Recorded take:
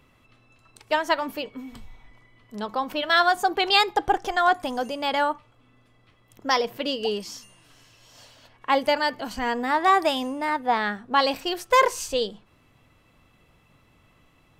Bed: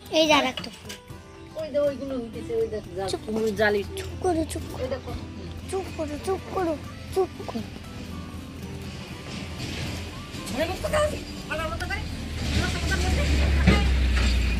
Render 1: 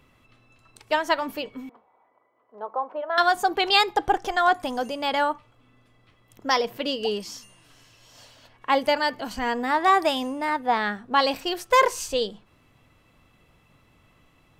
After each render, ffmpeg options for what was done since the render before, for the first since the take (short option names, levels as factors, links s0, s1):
-filter_complex "[0:a]asettb=1/sr,asplit=3[s0][s1][s2];[s0]atrim=end=1.694[s3];[s1]atrim=start=1.69:end=3.18,asetpts=PTS-STARTPTS,afade=t=in:d=0.004:c=qsin,afade=t=out:st=1.486:d=0.004:c=qsin,asuperpass=centerf=710:order=4:qfactor=1[s4];[s2]atrim=start=3.176[s5];[s3][s4]acrossfade=d=0.004:c1=hsin:c2=qsin[s6];[s6][s5]acrossfade=d=0.004:c1=qsin:c2=hsin"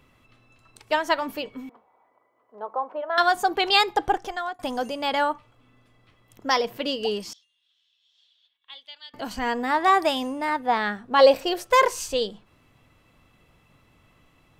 -filter_complex "[0:a]asettb=1/sr,asplit=3[s0][s1][s2];[s0]atrim=end=7.334[s3];[s1]atrim=start=7.33:end=9.14,asetpts=PTS-STARTPTS,afade=t=in:d=0.004:c=qsin,afade=t=out:st=1.806:d=0.004:c=qsin,bandpass=f=3500:t=q:w=12[s4];[s2]atrim=start=9.136[s5];[s3][s4]acrossfade=d=0.004:c1=hsin:c2=qsin[s6];[s6][s5]acrossfade=d=0.004:c1=qsin:c2=hsin,asettb=1/sr,asplit=3[s7][s8][s9];[s7]atrim=end=11.194[s10];[s8]atrim=start=11.19:end=11.68,asetpts=PTS-STARTPTS,afade=t=in:d=0.004:c=qsin,afade=t=out:st=0.486:d=0.004:c=qsin,equalizer=f=540:t=o:w=0.55:g=12.5[s11];[s9]atrim=start=11.676[s12];[s10][s11]acrossfade=d=0.004:c1=hsin:c2=qsin[s13];[s13][s12]acrossfade=d=0.004:c1=qsin:c2=hsin,asplit=2[s14][s15];[s14]atrim=end=4.59,asetpts=PTS-STARTPTS,afade=t=out:st=4.05:d=0.54:silence=0.0668344[s16];[s15]atrim=start=4.59,asetpts=PTS-STARTPTS,afade=t=in:d=0.004:c=hsin:silence=0.0668344[s17];[s16][s17]concat=n=2:v=0:a=1"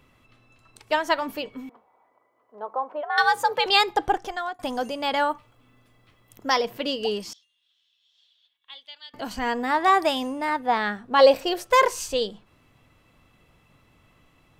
-filter_complex "[0:a]asettb=1/sr,asplit=3[s0][s1][s2];[s0]atrim=end=3.034[s3];[s1]atrim=start=3.03:end=3.66,asetpts=PTS-STARTPTS,afade=t=in:d=0.004:c=qsin,afade=t=out:st=0.626:d=0.004:c=qsin,afreqshift=100[s4];[s2]atrim=start=3.656[s5];[s3][s4]acrossfade=d=0.004:c1=hsin:c2=qsin[s6];[s6][s5]acrossfade=d=0.004:c1=qsin:c2=hsin,asettb=1/sr,asplit=3[s7][s8][s9];[s7]atrim=end=5.294[s10];[s8]atrim=start=5.29:end=6.5,asetpts=PTS-STARTPTS,afade=t=in:d=0.004:c=qsin,afade=t=out:st=1.206:d=0.004:c=qsin,highshelf=f=11000:g=11[s11];[s9]atrim=start=6.496[s12];[s10][s11]acrossfade=d=0.004:c1=hsin:c2=qsin[s13];[s13][s12]acrossfade=d=0.004:c1=qsin:c2=hsin"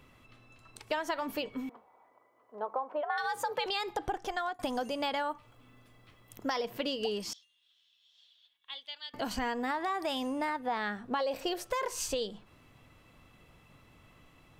-af "alimiter=limit=0.178:level=0:latency=1:release=37,acompressor=threshold=0.0316:ratio=6"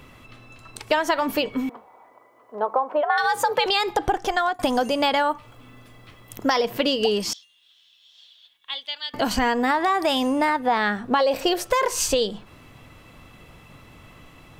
-af "volume=3.98"